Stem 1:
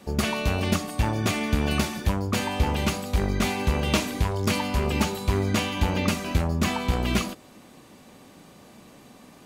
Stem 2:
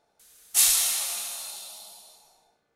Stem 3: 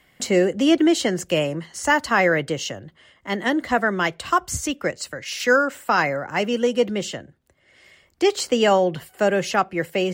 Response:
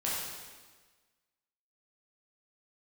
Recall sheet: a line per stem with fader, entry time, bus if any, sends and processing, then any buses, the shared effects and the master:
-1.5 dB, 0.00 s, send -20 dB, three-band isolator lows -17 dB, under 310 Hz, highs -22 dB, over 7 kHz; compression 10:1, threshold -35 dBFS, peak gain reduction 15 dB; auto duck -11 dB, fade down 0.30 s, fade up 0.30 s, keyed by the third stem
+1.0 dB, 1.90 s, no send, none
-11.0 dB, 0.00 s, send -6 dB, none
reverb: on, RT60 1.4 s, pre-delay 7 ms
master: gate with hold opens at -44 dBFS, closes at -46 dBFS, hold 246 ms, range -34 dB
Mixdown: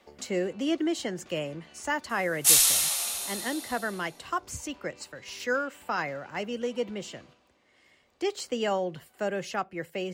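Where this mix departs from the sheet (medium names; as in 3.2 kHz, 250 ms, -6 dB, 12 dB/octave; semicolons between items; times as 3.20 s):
stem 1 -1.5 dB -> -9.0 dB; stem 3: send off; master: missing gate with hold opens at -44 dBFS, closes at -46 dBFS, hold 246 ms, range -34 dB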